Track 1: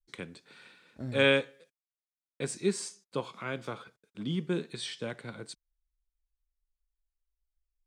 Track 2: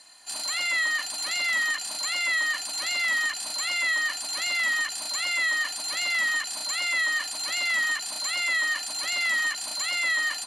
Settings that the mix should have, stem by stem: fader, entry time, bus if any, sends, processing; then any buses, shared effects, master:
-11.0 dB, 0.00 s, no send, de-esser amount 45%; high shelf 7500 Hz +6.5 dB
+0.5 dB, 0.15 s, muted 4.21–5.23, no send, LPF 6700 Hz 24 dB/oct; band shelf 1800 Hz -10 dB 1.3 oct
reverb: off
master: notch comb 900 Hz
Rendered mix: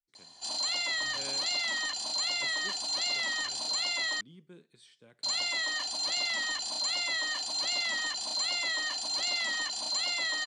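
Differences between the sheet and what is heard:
stem 1 -11.0 dB -> -21.5 dB; master: missing notch comb 900 Hz

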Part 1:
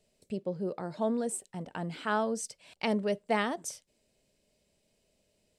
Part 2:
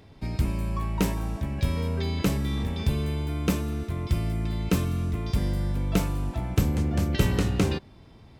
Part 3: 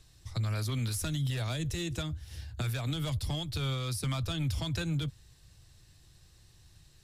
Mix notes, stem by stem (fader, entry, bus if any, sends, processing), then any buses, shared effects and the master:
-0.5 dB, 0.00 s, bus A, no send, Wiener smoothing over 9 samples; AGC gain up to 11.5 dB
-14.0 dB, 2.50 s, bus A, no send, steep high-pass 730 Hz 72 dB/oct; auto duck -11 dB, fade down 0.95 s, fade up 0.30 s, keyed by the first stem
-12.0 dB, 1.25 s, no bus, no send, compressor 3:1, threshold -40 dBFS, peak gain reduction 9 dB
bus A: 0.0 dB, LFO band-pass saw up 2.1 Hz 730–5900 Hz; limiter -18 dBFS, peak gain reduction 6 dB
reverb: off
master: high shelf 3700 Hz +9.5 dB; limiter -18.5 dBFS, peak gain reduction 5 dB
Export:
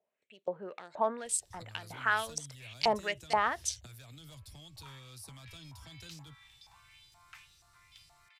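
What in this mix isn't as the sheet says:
stem 2: entry 2.50 s -> 3.85 s; master: missing limiter -18.5 dBFS, peak gain reduction 5 dB

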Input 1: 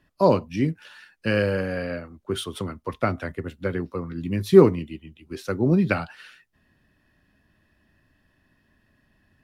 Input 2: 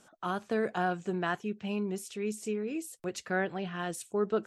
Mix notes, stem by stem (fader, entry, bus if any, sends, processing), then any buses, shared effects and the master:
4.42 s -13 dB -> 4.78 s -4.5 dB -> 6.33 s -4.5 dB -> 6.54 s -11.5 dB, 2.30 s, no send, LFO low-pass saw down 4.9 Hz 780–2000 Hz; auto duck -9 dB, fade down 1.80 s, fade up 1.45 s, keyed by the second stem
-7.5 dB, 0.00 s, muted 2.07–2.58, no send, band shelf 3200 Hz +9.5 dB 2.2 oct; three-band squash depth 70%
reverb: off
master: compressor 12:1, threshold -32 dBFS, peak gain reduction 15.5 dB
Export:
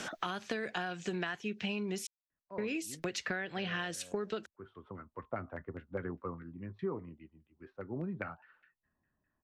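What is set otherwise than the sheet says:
stem 1 -13.0 dB -> -20.0 dB; stem 2 -7.5 dB -> -0.5 dB

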